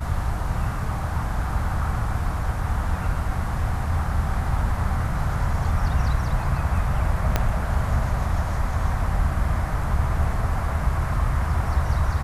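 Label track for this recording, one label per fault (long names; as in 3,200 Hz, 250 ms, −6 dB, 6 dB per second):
7.360000	7.360000	click −6 dBFS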